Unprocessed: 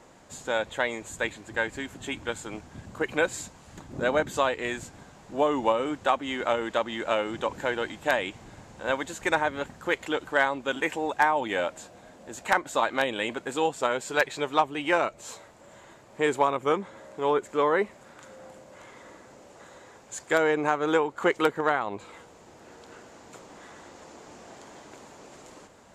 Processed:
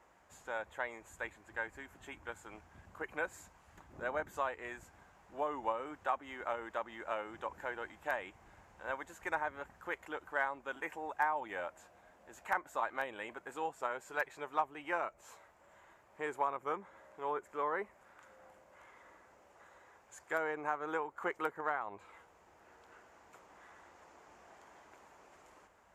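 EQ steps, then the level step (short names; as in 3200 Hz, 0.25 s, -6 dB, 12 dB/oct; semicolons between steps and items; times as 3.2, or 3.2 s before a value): HPF 41 Hz; dynamic EQ 3200 Hz, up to -6 dB, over -44 dBFS, Q 0.94; graphic EQ 125/250/500/4000/8000 Hz -11/-10/-6/-10/-9 dB; -6.5 dB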